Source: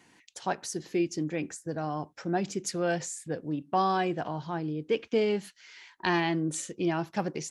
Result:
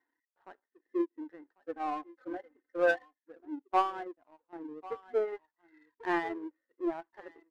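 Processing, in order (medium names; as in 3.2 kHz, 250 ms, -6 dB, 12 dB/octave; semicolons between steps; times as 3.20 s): delay 1094 ms -14 dB; reverb removal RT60 1.4 s; 1.62–3.19 s: comb 3.9 ms, depth 88%; harmonic-percussive split percussive -17 dB; tilt EQ +1.5 dB/octave; FFT band-pass 240–2100 Hz; power-law waveshaper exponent 1.4; 3.79–4.53 s: upward expansion 1.5:1, over -57 dBFS; trim +3.5 dB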